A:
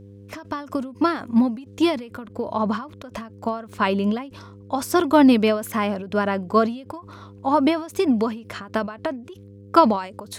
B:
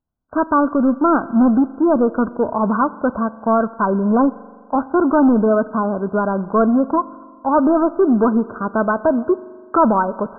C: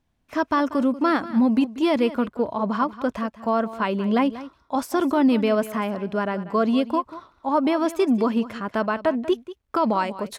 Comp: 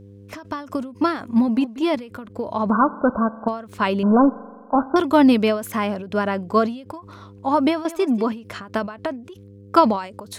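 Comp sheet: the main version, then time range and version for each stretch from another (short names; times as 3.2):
A
1.48–1.95 from C
2.7–3.48 from B
4.03–4.96 from B
7.85–8.32 from C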